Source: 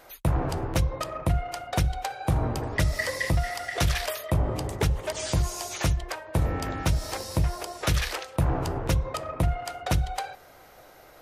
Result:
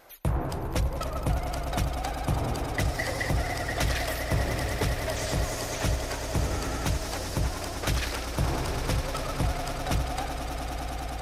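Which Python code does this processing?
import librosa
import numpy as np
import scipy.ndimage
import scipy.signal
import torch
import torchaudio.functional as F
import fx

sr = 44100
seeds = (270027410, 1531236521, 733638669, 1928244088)

y = fx.echo_swell(x, sr, ms=101, loudest=8, wet_db=-12.0)
y = fx.vibrato(y, sr, rate_hz=14.0, depth_cents=71.0)
y = y * librosa.db_to_amplitude(-3.0)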